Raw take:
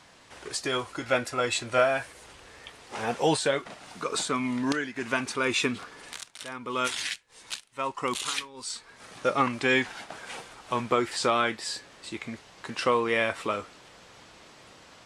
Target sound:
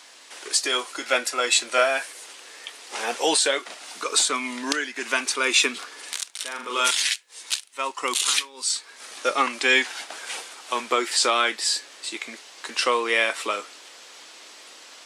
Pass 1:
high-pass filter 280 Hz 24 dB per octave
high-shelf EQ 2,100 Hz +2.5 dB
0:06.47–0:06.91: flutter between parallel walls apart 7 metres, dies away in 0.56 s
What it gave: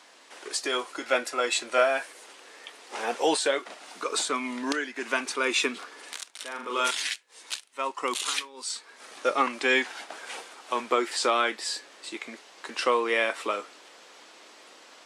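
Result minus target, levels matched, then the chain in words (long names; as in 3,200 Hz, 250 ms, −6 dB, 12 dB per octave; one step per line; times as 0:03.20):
4,000 Hz band −3.0 dB
high-pass filter 280 Hz 24 dB per octave
high-shelf EQ 2,100 Hz +12.5 dB
0:06.47–0:06.91: flutter between parallel walls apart 7 metres, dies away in 0.56 s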